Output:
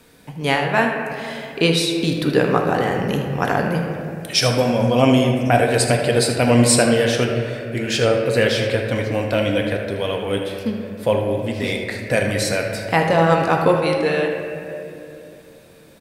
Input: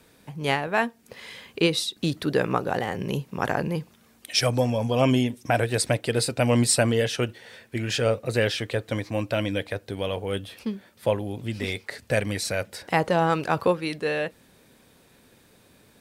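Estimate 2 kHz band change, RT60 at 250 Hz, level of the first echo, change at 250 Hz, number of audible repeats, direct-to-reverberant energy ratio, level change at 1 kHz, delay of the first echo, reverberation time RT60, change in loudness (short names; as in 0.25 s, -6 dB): +7.0 dB, 3.3 s, -11.5 dB, +7.5 dB, 1, 1.5 dB, +7.0 dB, 78 ms, 2.8 s, +6.5 dB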